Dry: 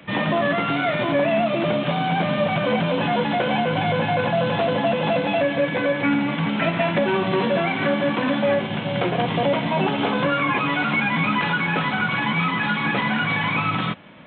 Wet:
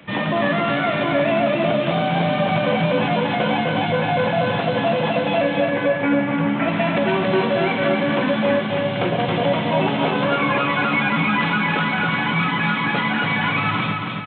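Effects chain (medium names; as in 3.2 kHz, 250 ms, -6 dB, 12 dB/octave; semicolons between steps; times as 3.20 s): 5.60–6.68 s: low-pass 2.3 kHz 12 dB/octave; feedback delay 275 ms, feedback 46%, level -4 dB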